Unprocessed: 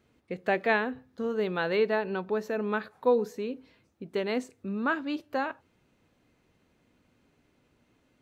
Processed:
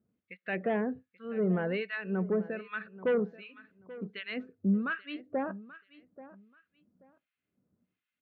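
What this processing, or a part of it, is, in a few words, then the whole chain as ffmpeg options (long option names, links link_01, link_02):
guitar amplifier with harmonic tremolo: -filter_complex "[0:a]acrossover=split=1300[link_01][link_02];[link_01]aeval=exprs='val(0)*(1-1/2+1/2*cos(2*PI*1.3*n/s))':channel_layout=same[link_03];[link_02]aeval=exprs='val(0)*(1-1/2-1/2*cos(2*PI*1.3*n/s))':channel_layout=same[link_04];[link_03][link_04]amix=inputs=2:normalize=0,asoftclip=type=tanh:threshold=-25.5dB,highpass=83,equalizer=frequency=91:width_type=q:width=4:gain=6,equalizer=frequency=190:width_type=q:width=4:gain=9,equalizer=frequency=890:width_type=q:width=4:gain=-8,lowpass=frequency=3500:width=0.5412,lowpass=frequency=3500:width=1.3066,afftdn=noise_reduction=15:noise_floor=-50,aecho=1:1:833|1666:0.133|0.0293,volume=2.5dB"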